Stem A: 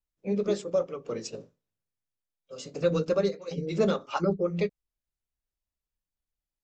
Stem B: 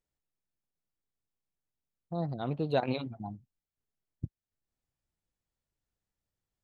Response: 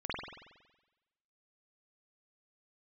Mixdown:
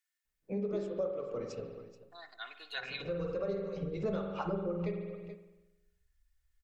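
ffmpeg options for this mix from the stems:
-filter_complex "[0:a]asubboost=boost=8:cutoff=82,lowpass=f=1500:p=1,adelay=250,volume=0.891,asplit=3[s0][s1][s2];[s1]volume=0.473[s3];[s2]volume=0.133[s4];[1:a]highpass=f=1700:t=q:w=4,highshelf=f=2900:g=9,aecho=1:1:2.8:0.7,volume=0.501,asplit=3[s5][s6][s7];[s6]volume=0.188[s8];[s7]apad=whole_len=303452[s9];[s0][s9]sidechaincompress=threshold=0.00891:ratio=8:attack=16:release=1050[s10];[2:a]atrim=start_sample=2205[s11];[s3][s8]amix=inputs=2:normalize=0[s12];[s12][s11]afir=irnorm=-1:irlink=0[s13];[s4]aecho=0:1:430:1[s14];[s10][s5][s13][s14]amix=inputs=4:normalize=0,acompressor=threshold=0.0112:ratio=2"

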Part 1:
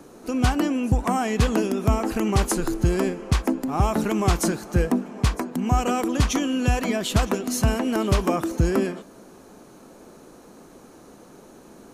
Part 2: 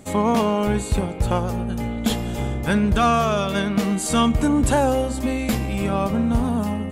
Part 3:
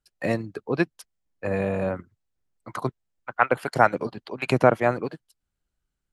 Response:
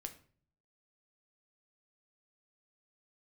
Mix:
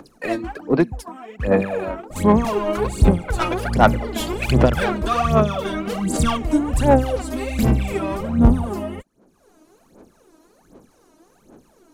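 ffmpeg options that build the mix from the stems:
-filter_complex "[0:a]afwtdn=0.0282,acompressor=mode=upward:threshold=0.0631:ratio=2.5,volume=0.178[s0];[1:a]acompressor=mode=upward:threshold=0.0501:ratio=2.5,adynamicequalizer=threshold=0.0224:dfrequency=1500:dqfactor=0.7:tfrequency=1500:tqfactor=0.7:attack=5:release=100:ratio=0.375:range=3:mode=cutabove:tftype=highshelf,adelay=2100,volume=0.75[s1];[2:a]highpass=170,acontrast=55,volume=0.501,asplit=2[s2][s3];[s3]volume=0.15[s4];[3:a]atrim=start_sample=2205[s5];[s4][s5]afir=irnorm=-1:irlink=0[s6];[s0][s1][s2][s6]amix=inputs=4:normalize=0,asoftclip=type=tanh:threshold=0.15,aphaser=in_gain=1:out_gain=1:delay=3.2:decay=0.77:speed=1.3:type=sinusoidal"

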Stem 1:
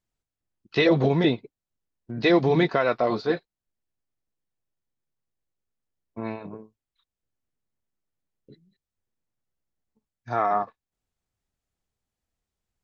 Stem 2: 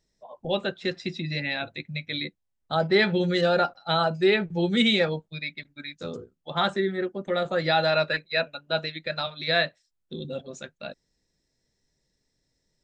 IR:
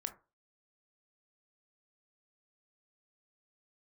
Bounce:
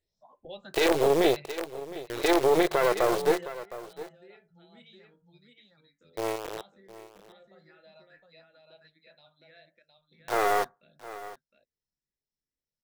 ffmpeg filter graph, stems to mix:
-filter_complex "[0:a]acrusher=bits=3:dc=4:mix=0:aa=0.000001,lowshelf=f=300:t=q:w=3:g=-9.5,volume=1.19,asplit=4[s0][s1][s2][s3];[s1]volume=0.126[s4];[s2]volume=0.15[s5];[1:a]acompressor=threshold=0.0112:ratio=2,asplit=2[s6][s7];[s7]afreqshift=2.3[s8];[s6][s8]amix=inputs=2:normalize=1,volume=0.398,asplit=3[s9][s10][s11];[s10]volume=0.282[s12];[s11]volume=0.15[s13];[s3]apad=whole_len=565893[s14];[s9][s14]sidechaingate=range=0.0224:threshold=0.0158:ratio=16:detection=peak[s15];[2:a]atrim=start_sample=2205[s16];[s4][s12]amix=inputs=2:normalize=0[s17];[s17][s16]afir=irnorm=-1:irlink=0[s18];[s5][s13]amix=inputs=2:normalize=0,aecho=0:1:712:1[s19];[s0][s15][s18][s19]amix=inputs=4:normalize=0,alimiter=limit=0.237:level=0:latency=1:release=23"

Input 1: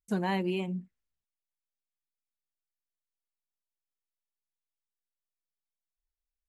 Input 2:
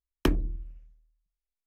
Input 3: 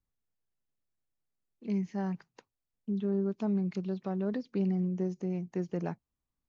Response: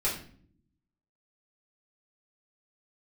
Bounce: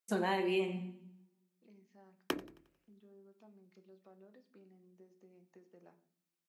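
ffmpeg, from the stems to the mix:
-filter_complex "[0:a]volume=1.12,asplit=3[s0][s1][s2];[s1]volume=0.376[s3];[s2]volume=0.168[s4];[1:a]adelay=2050,volume=0.562,asplit=2[s5][s6];[s6]volume=0.0841[s7];[2:a]acompressor=threshold=0.00708:ratio=3,volume=0.168,asplit=2[s8][s9];[s9]volume=0.237[s10];[3:a]atrim=start_sample=2205[s11];[s3][s10]amix=inputs=2:normalize=0[s12];[s12][s11]afir=irnorm=-1:irlink=0[s13];[s4][s7]amix=inputs=2:normalize=0,aecho=0:1:89|178|267|356|445|534|623:1|0.47|0.221|0.104|0.0488|0.0229|0.0108[s14];[s0][s5][s8][s13][s14]amix=inputs=5:normalize=0,highpass=340,acompressor=threshold=0.0355:ratio=6"

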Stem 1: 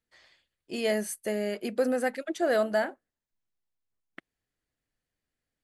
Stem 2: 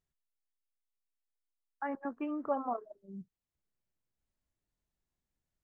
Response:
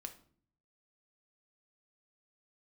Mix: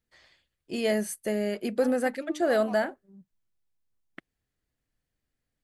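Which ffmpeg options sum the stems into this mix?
-filter_complex "[0:a]lowshelf=f=210:g=7,volume=1[s0];[1:a]adynamicsmooth=sensitivity=8:basefreq=620,volume=0.473[s1];[s0][s1]amix=inputs=2:normalize=0"

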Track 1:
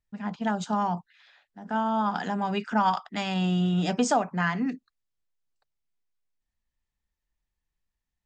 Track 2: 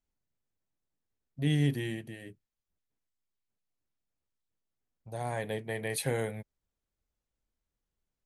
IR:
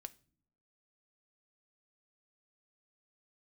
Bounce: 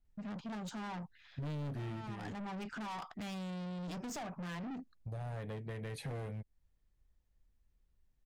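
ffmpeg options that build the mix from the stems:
-filter_complex "[0:a]lowshelf=f=210:g=9,acompressor=threshold=0.0562:ratio=2,aeval=exprs='(tanh(56.2*val(0)+0.15)-tanh(0.15))/56.2':c=same,adelay=50,volume=0.668[s0];[1:a]aemphasis=mode=reproduction:type=bsi,volume=0.944[s1];[s0][s1]amix=inputs=2:normalize=0,volume=26.6,asoftclip=hard,volume=0.0376,acompressor=threshold=0.01:ratio=6"

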